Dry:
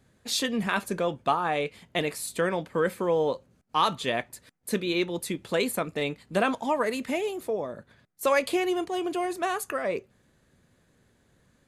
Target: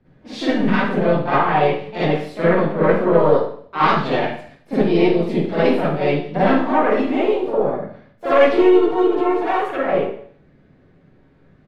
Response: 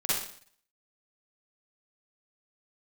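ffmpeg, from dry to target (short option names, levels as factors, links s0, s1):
-filter_complex "[0:a]aemphasis=mode=reproduction:type=riaa,aeval=exprs='(tanh(5.01*val(0)+0.75)-tanh(0.75))/5.01':c=same,acontrast=28,acrossover=split=170 4200:gain=0.251 1 0.141[s0][s1][s2];[s0][s1][s2]amix=inputs=3:normalize=0,asplit=3[s3][s4][s5];[s4]asetrate=37084,aresample=44100,atempo=1.18921,volume=0.158[s6];[s5]asetrate=55563,aresample=44100,atempo=0.793701,volume=0.501[s7];[s3][s6][s7]amix=inputs=3:normalize=0[s8];[1:a]atrim=start_sample=2205[s9];[s8][s9]afir=irnorm=-1:irlink=0,volume=0.794"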